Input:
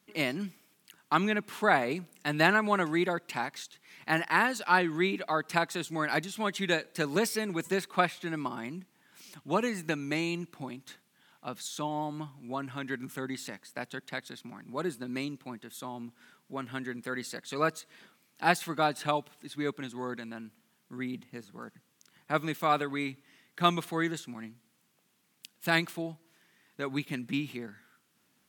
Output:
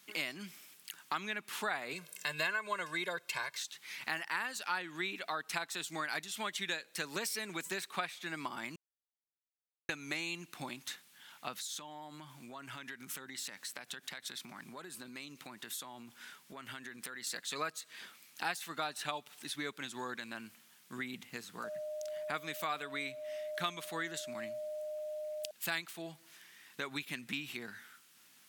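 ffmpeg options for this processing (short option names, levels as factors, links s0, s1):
-filter_complex "[0:a]asettb=1/sr,asplit=3[s0][s1][s2];[s0]atrim=end=1.934[s3];[s1]atrim=start=1.93:end=3.57,asetpts=PTS-STARTPTS,afade=t=in:d=0.004:c=qsin,afade=t=out:st=1.636:d=0.004:c=qsin,aecho=1:1:1.9:0.96,atrim=end_sample=72324[s4];[s2]atrim=start=3.566[s5];[s3][s4]acrossfade=d=0.004:c1=hsin:c2=qsin[s6];[s6][s5]acrossfade=d=0.004:c1=qsin:c2=hsin,asettb=1/sr,asplit=3[s7][s8][s9];[s7]atrim=end=11.574[s10];[s8]atrim=start=11.57:end=17.27,asetpts=PTS-STARTPTS,afade=t=in:d=0.004:c=qsin,afade=t=out:st=5.696:d=0.004:c=qsin,acompressor=threshold=0.00631:ratio=16:attack=3.2:release=140:knee=1:detection=peak[s11];[s9]atrim=start=17.266[s12];[s10][s11]acrossfade=d=0.004:c1=hsin:c2=qsin[s13];[s13][s12]acrossfade=d=0.004:c1=qsin:c2=hsin,asettb=1/sr,asplit=3[s14][s15][s16];[s14]atrim=end=21.644[s17];[s15]atrim=start=21.64:end=25.51,asetpts=PTS-STARTPTS,afade=t=in:d=0.004:c=qsin,afade=t=out:st=3.866:d=0.004:c=qsin,aeval=exprs='val(0)+0.0141*sin(2*PI*610*n/s)':c=same[s18];[s16]atrim=start=25.506[s19];[s17][s18]acrossfade=d=0.004:c1=hsin:c2=qsin[s20];[s20][s19]acrossfade=d=0.004:c1=qsin:c2=hsin,asplit=3[s21][s22][s23];[s21]atrim=end=8.76,asetpts=PTS-STARTPTS,afade=t=out:st=8.756:d=0.004:c=hsin[s24];[s22]atrim=start=8.76:end=9.89,asetpts=PTS-STARTPTS,volume=0[s25];[s23]atrim=start=9.89,asetpts=PTS-STARTPTS,afade=t=in:d=0.004:c=hsin[s26];[s24][s25][s26]concat=n=3:v=0:a=1,tiltshelf=f=890:g=-7.5,acompressor=threshold=0.00794:ratio=3,volume=1.41"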